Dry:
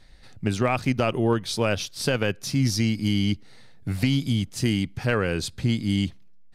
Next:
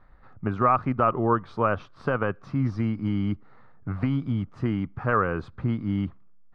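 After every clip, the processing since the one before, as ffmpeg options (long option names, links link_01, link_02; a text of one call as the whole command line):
ffmpeg -i in.wav -af "lowpass=frequency=1200:width_type=q:width=4.9,volume=-3dB" out.wav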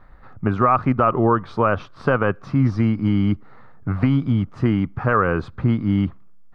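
ffmpeg -i in.wav -af "alimiter=level_in=13dB:limit=-1dB:release=50:level=0:latency=1,volume=-5.5dB" out.wav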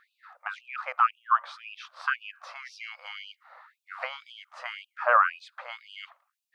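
ffmpeg -i in.wav -af "afftfilt=real='re*gte(b*sr/1024,480*pow(2500/480,0.5+0.5*sin(2*PI*1.9*pts/sr)))':imag='im*gte(b*sr/1024,480*pow(2500/480,0.5+0.5*sin(2*PI*1.9*pts/sr)))':win_size=1024:overlap=0.75" out.wav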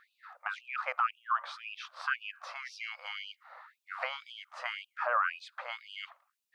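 ffmpeg -i in.wav -af "alimiter=limit=-19.5dB:level=0:latency=1:release=45" out.wav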